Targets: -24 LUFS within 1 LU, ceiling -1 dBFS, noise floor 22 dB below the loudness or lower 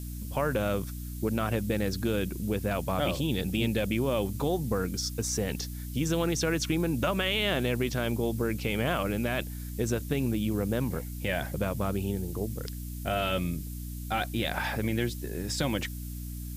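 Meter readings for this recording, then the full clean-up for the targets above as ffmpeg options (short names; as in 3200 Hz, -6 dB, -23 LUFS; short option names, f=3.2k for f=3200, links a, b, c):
hum 60 Hz; harmonics up to 300 Hz; hum level -35 dBFS; noise floor -38 dBFS; noise floor target -53 dBFS; loudness -30.5 LUFS; peak -15.5 dBFS; loudness target -24.0 LUFS
-> -af "bandreject=f=60:t=h:w=4,bandreject=f=120:t=h:w=4,bandreject=f=180:t=h:w=4,bandreject=f=240:t=h:w=4,bandreject=f=300:t=h:w=4"
-af "afftdn=nr=15:nf=-38"
-af "volume=6.5dB"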